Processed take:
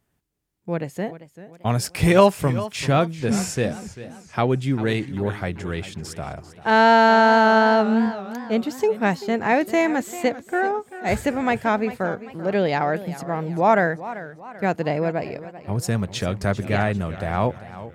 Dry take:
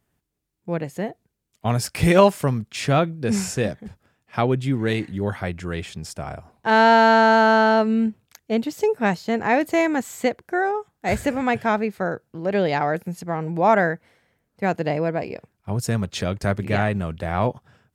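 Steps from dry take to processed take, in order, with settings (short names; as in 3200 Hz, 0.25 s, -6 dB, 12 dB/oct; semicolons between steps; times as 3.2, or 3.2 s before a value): warbling echo 0.392 s, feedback 44%, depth 121 cents, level -15 dB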